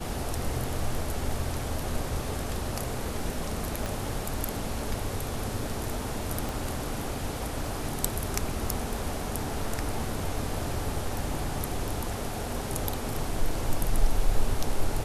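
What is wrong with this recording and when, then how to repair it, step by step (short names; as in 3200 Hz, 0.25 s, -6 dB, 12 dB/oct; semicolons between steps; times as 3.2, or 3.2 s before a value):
3.86 pop
6.49 pop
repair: de-click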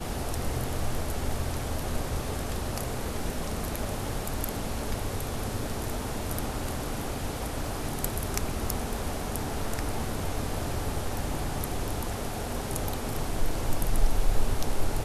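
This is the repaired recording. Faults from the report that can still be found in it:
3.86 pop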